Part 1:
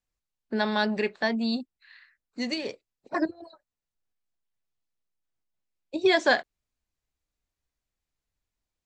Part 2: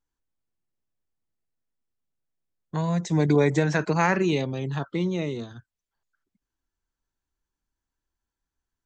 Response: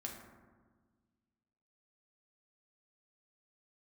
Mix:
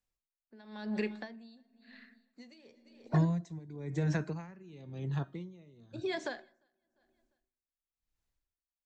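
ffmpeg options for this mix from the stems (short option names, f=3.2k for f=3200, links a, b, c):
-filter_complex "[0:a]acompressor=threshold=-29dB:ratio=4,volume=-3dB,asplit=4[a][b][c][d];[b]volume=-11.5dB[e];[c]volume=-21.5dB[f];[1:a]lowshelf=f=180:g=12,adelay=400,volume=-3dB,asplit=2[g][h];[h]volume=-24dB[i];[d]apad=whole_len=408218[j];[g][j]sidechaingate=range=-8dB:threshold=-57dB:ratio=16:detection=peak[k];[2:a]atrim=start_sample=2205[l];[e][i]amix=inputs=2:normalize=0[m];[m][l]afir=irnorm=-1:irlink=0[n];[f]aecho=0:1:349|698|1047|1396:1|0.22|0.0484|0.0106[o];[a][k][n][o]amix=inputs=4:normalize=0,acrossover=split=360[p][q];[q]acompressor=threshold=-33dB:ratio=6[r];[p][r]amix=inputs=2:normalize=0,bandreject=f=309.5:t=h:w=4,bandreject=f=619:t=h:w=4,bandreject=f=928.5:t=h:w=4,bandreject=f=1.238k:t=h:w=4,bandreject=f=1.5475k:t=h:w=4,bandreject=f=1.857k:t=h:w=4,bandreject=f=2.1665k:t=h:w=4,bandreject=f=2.476k:t=h:w=4,bandreject=f=2.7855k:t=h:w=4,bandreject=f=3.095k:t=h:w=4,bandreject=f=3.4045k:t=h:w=4,bandreject=f=3.714k:t=h:w=4,bandreject=f=4.0235k:t=h:w=4,bandreject=f=4.333k:t=h:w=4,bandreject=f=4.6425k:t=h:w=4,bandreject=f=4.952k:t=h:w=4,bandreject=f=5.2615k:t=h:w=4,bandreject=f=5.571k:t=h:w=4,bandreject=f=5.8805k:t=h:w=4,bandreject=f=6.19k:t=h:w=4,bandreject=f=6.4995k:t=h:w=4,bandreject=f=6.809k:t=h:w=4,bandreject=f=7.1185k:t=h:w=4,bandreject=f=7.428k:t=h:w=4,bandreject=f=7.7375k:t=h:w=4,bandreject=f=8.047k:t=h:w=4,bandreject=f=8.3565k:t=h:w=4,bandreject=f=8.666k:t=h:w=4,bandreject=f=8.9755k:t=h:w=4,bandreject=f=9.285k:t=h:w=4,bandreject=f=9.5945k:t=h:w=4,bandreject=f=9.904k:t=h:w=4,bandreject=f=10.2135k:t=h:w=4,bandreject=f=10.523k:t=h:w=4,aeval=exprs='val(0)*pow(10,-23*(0.5-0.5*cos(2*PI*0.97*n/s))/20)':c=same"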